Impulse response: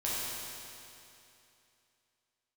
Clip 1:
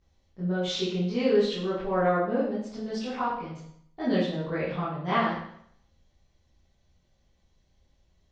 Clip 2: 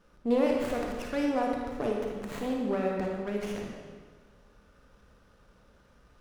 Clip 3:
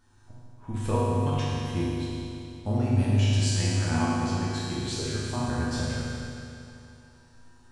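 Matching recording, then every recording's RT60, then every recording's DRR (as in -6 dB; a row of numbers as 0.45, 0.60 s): 3; 0.65, 1.5, 2.8 s; -11.5, -1.0, -8.0 dB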